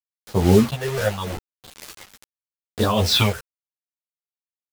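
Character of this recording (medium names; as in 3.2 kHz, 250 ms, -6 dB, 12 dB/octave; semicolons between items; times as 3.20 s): phasing stages 6, 0.8 Hz, lowest notch 230–2300 Hz; a quantiser's noise floor 6-bit, dither none; tremolo triangle 2.3 Hz, depth 80%; a shimmering, thickened sound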